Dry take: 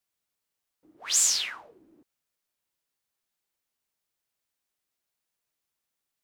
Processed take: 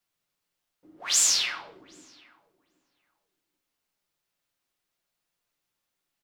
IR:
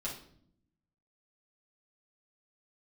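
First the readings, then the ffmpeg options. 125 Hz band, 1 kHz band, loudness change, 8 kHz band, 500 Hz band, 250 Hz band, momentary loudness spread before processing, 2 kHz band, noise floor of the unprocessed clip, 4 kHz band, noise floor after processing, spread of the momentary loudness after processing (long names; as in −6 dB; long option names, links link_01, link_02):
can't be measured, +4.5 dB, +1.5 dB, +1.0 dB, +4.5 dB, +5.0 dB, 9 LU, +4.0 dB, −85 dBFS, +3.0 dB, −83 dBFS, 20 LU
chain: -filter_complex "[0:a]asplit=2[link_01][link_02];[link_02]adelay=780,lowpass=frequency=1300:poles=1,volume=-20dB,asplit=2[link_03][link_04];[link_04]adelay=780,lowpass=frequency=1300:poles=1,volume=0.21[link_05];[link_01][link_03][link_05]amix=inputs=3:normalize=0,asplit=2[link_06][link_07];[1:a]atrim=start_sample=2205,lowpass=6600[link_08];[link_07][link_08]afir=irnorm=-1:irlink=0,volume=-2dB[link_09];[link_06][link_09]amix=inputs=2:normalize=0"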